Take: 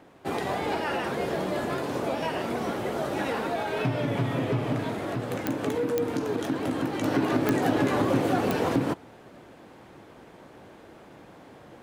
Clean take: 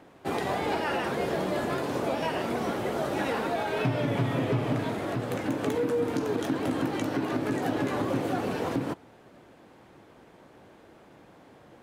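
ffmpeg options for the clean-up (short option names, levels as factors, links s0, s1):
-af "adeclick=t=4,asetnsamples=n=441:p=0,asendcmd='7.03 volume volume -4.5dB',volume=1"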